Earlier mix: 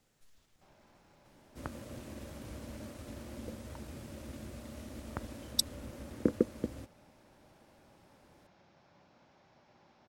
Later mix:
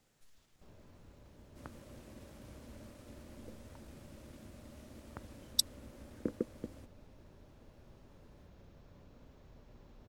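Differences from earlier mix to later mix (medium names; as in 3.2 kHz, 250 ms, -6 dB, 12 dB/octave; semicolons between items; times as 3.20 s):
first sound: remove cabinet simulation 210–6700 Hz, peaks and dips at 260 Hz -7 dB, 450 Hz -9 dB, 810 Hz +7 dB, 1.5 kHz +3 dB, 2.2 kHz +4 dB, 5.2 kHz +4 dB; second sound -8.0 dB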